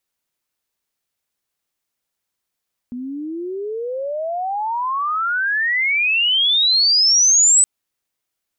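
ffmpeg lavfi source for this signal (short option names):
-f lavfi -i "aevalsrc='pow(10,(-25.5+16.5*t/4.72)/20)*sin(2*PI*240*4.72/log(8100/240)*(exp(log(8100/240)*t/4.72)-1))':d=4.72:s=44100"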